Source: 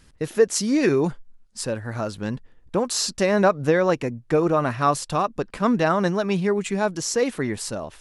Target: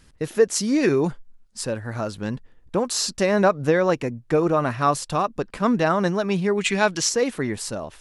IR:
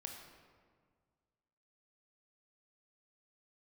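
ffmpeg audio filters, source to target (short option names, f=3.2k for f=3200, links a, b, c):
-filter_complex "[0:a]asplit=3[a][b][c];[a]afade=t=out:st=6.57:d=0.02[d];[b]equalizer=f=2.9k:w=0.5:g=11.5,afade=t=in:st=6.57:d=0.02,afade=t=out:st=7.08:d=0.02[e];[c]afade=t=in:st=7.08:d=0.02[f];[d][e][f]amix=inputs=3:normalize=0"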